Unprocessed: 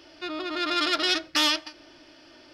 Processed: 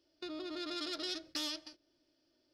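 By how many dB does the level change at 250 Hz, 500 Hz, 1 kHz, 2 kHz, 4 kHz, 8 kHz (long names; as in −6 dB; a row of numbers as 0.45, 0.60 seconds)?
−11.0, −12.0, −20.0, −20.5, −15.0, −13.0 decibels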